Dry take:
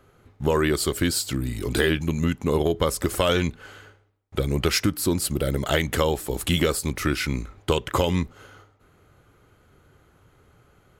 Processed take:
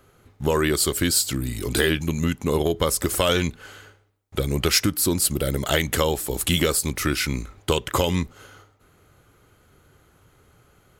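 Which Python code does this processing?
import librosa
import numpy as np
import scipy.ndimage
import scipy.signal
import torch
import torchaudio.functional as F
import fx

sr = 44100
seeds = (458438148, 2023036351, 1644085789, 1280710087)

y = fx.high_shelf(x, sr, hz=4100.0, db=7.5)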